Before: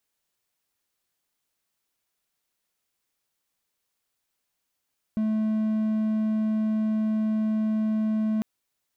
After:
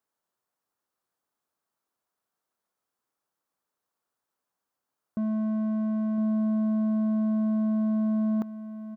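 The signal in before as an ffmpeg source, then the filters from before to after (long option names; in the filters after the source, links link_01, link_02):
-f lavfi -i "aevalsrc='0.1*(1-4*abs(mod(217*t+0.25,1)-0.5))':duration=3.25:sample_rate=44100"
-filter_complex "[0:a]highpass=frequency=190:poles=1,highshelf=frequency=1700:width_type=q:width=1.5:gain=-9,asplit=2[link_01][link_02];[link_02]aecho=0:1:1009:0.282[link_03];[link_01][link_03]amix=inputs=2:normalize=0"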